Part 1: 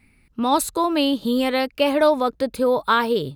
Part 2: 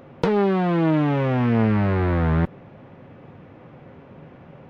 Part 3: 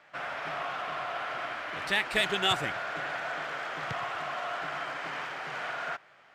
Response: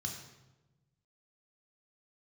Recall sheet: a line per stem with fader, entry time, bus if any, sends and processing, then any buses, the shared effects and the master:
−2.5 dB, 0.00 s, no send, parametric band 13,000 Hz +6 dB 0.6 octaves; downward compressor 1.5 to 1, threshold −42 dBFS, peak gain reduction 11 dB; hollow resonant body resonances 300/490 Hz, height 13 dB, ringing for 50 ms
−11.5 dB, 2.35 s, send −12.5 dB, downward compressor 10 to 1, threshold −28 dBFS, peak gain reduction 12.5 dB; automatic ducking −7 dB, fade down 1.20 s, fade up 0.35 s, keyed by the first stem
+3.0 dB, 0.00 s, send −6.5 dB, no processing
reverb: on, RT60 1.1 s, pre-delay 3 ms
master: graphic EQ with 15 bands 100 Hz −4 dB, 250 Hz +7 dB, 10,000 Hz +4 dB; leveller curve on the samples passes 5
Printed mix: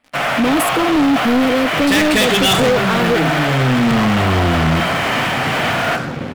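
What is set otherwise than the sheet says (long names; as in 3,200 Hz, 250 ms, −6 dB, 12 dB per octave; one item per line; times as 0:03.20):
stem 1 −2.5 dB → −9.5 dB
stem 2 −11.5 dB → 0.0 dB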